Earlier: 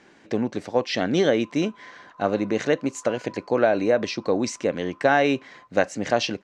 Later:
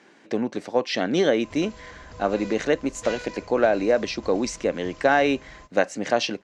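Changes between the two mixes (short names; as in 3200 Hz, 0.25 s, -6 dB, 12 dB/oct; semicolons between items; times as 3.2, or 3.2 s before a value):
speech: add HPF 170 Hz 12 dB/oct; background: remove Butterworth band-pass 1100 Hz, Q 2.4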